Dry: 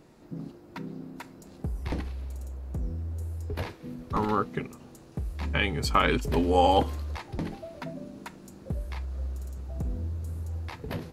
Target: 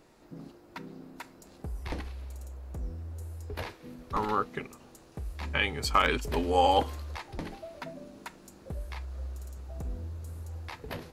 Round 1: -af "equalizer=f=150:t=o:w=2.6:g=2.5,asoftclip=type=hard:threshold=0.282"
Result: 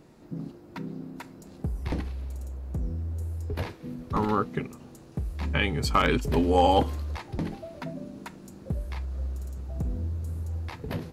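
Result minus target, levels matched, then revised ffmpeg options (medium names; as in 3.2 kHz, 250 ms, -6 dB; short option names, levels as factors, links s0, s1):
125 Hz band +5.0 dB
-af "equalizer=f=150:t=o:w=2.6:g=-8.5,asoftclip=type=hard:threshold=0.282"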